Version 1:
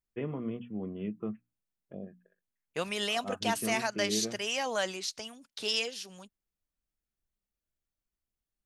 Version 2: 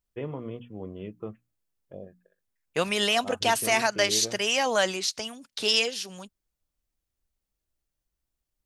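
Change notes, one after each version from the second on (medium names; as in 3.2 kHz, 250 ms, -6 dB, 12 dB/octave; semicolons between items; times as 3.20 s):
first voice: remove cabinet simulation 130–3100 Hz, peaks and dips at 210 Hz +8 dB, 530 Hz -6 dB, 900 Hz -6 dB; second voice +7.5 dB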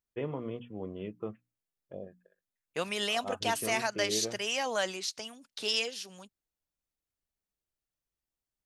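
second voice -7.0 dB; master: add bass shelf 91 Hz -9 dB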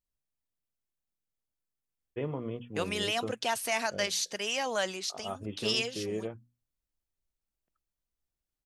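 first voice: entry +2.00 s; master: add bass shelf 91 Hz +9 dB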